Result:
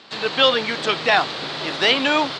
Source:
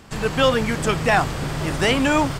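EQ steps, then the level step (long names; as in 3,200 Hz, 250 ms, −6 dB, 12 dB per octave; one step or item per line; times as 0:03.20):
high-pass filter 330 Hz 12 dB per octave
low-pass with resonance 4,000 Hz, resonance Q 4.7
0.0 dB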